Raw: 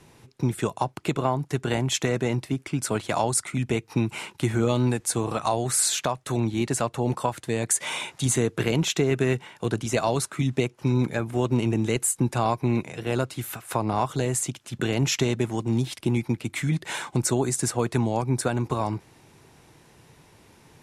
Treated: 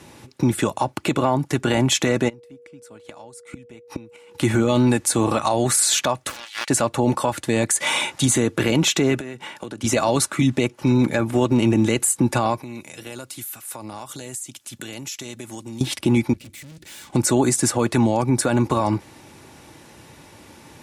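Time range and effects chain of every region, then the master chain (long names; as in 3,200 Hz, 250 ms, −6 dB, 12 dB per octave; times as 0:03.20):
0:02.28–0:04.39: gate with flip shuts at −24 dBFS, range −28 dB + steady tone 480 Hz −53 dBFS
0:06.29–0:06.70: high-pass filter 1,300 Hz 24 dB per octave + highs frequency-modulated by the lows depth 0.52 ms
0:09.19–0:09.84: high-pass filter 130 Hz + downward compressor 20 to 1, threshold −36 dBFS
0:12.62–0:15.81: high-pass filter 49 Hz + first-order pre-emphasis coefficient 0.8 + downward compressor, threshold −38 dBFS
0:16.33–0:17.10: tube saturation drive 44 dB, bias 0.7 + parametric band 920 Hz −13.5 dB 2.2 octaves
whole clip: high-pass filter 62 Hz; comb filter 3.5 ms, depth 37%; brickwall limiter −17.5 dBFS; level +8.5 dB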